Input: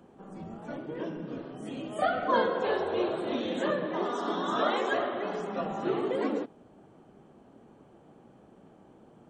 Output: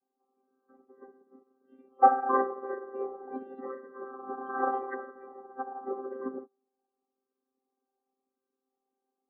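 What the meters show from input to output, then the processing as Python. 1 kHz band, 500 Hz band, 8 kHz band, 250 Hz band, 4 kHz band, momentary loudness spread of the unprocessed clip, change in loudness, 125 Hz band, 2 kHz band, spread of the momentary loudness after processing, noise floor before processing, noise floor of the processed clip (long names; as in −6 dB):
+3.0 dB, −6.0 dB, can't be measured, −8.5 dB, below −40 dB, 13 LU, −0.5 dB, below −20 dB, −7.0 dB, 20 LU, −57 dBFS, below −85 dBFS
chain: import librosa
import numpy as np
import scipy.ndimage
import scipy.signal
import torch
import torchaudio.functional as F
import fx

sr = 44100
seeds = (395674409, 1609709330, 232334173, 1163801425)

y = fx.chord_vocoder(x, sr, chord='bare fifth', root=60)
y = fx.spec_topn(y, sr, count=32)
y = fx.low_shelf(y, sr, hz=180.0, db=5.0)
y = fx.env_lowpass_down(y, sr, base_hz=1500.0, full_db=-25.0)
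y = fx.band_shelf(y, sr, hz=1000.0, db=9.5, octaves=1.7)
y = fx.echo_feedback(y, sr, ms=97, feedback_pct=56, wet_db=-22)
y = fx.upward_expand(y, sr, threshold_db=-41.0, expansion=2.5)
y = y * 10.0 ** (3.5 / 20.0)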